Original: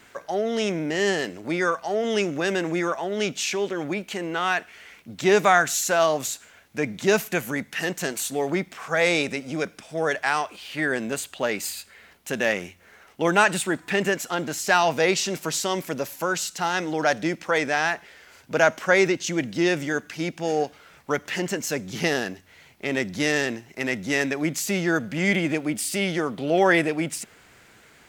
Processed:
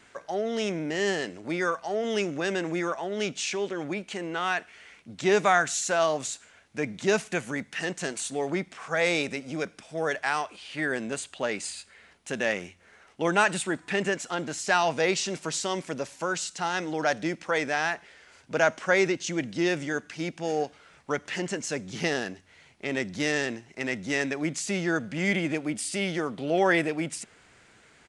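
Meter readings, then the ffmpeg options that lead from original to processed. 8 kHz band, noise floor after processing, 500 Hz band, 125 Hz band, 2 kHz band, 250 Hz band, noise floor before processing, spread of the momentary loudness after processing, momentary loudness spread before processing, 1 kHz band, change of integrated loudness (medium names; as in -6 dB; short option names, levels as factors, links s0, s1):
-4.0 dB, -58 dBFS, -4.0 dB, -4.0 dB, -4.0 dB, -4.0 dB, -54 dBFS, 10 LU, 11 LU, -4.0 dB, -4.0 dB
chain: -af "aresample=22050,aresample=44100,volume=0.631"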